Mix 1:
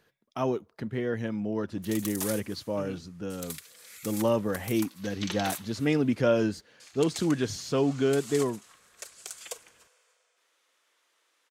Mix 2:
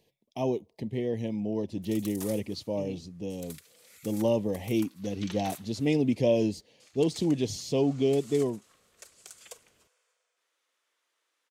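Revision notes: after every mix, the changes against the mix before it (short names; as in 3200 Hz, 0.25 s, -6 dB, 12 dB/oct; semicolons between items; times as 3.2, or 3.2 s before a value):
speech: add Butterworth band-stop 1400 Hz, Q 1; background -7.5 dB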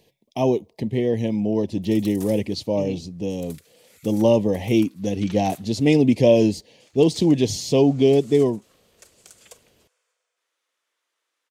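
speech +9.0 dB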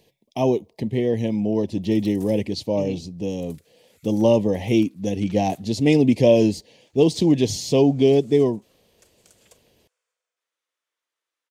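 background -8.0 dB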